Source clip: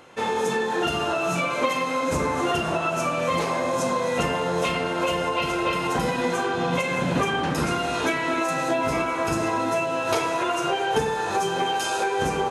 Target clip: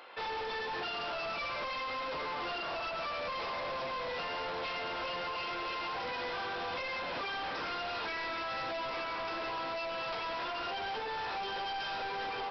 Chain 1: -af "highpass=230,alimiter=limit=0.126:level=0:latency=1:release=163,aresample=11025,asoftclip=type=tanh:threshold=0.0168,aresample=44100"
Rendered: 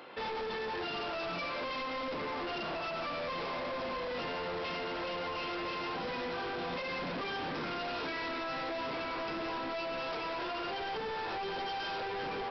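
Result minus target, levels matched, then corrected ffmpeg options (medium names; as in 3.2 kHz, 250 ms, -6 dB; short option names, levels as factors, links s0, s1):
250 Hz band +7.0 dB
-af "highpass=610,alimiter=limit=0.126:level=0:latency=1:release=163,aresample=11025,asoftclip=type=tanh:threshold=0.0168,aresample=44100"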